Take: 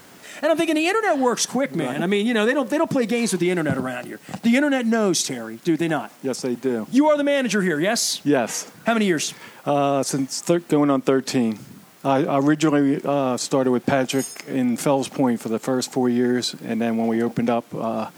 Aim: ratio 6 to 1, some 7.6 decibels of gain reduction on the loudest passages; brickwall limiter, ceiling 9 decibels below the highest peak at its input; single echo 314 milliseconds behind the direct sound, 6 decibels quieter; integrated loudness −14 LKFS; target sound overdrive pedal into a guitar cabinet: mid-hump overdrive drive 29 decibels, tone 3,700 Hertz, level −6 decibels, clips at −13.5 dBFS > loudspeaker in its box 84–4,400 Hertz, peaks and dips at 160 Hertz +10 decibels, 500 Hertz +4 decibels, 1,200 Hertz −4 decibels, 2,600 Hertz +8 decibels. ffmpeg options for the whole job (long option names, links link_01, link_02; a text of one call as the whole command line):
ffmpeg -i in.wav -filter_complex "[0:a]acompressor=threshold=-21dB:ratio=6,alimiter=limit=-17dB:level=0:latency=1,aecho=1:1:314:0.501,asplit=2[link_01][link_02];[link_02]highpass=frequency=720:poles=1,volume=29dB,asoftclip=type=tanh:threshold=-13.5dB[link_03];[link_01][link_03]amix=inputs=2:normalize=0,lowpass=frequency=3700:poles=1,volume=-6dB,highpass=84,equalizer=frequency=160:width_type=q:width=4:gain=10,equalizer=frequency=500:width_type=q:width=4:gain=4,equalizer=frequency=1200:width_type=q:width=4:gain=-4,equalizer=frequency=2600:width_type=q:width=4:gain=8,lowpass=frequency=4400:width=0.5412,lowpass=frequency=4400:width=1.3066,volume=5dB" out.wav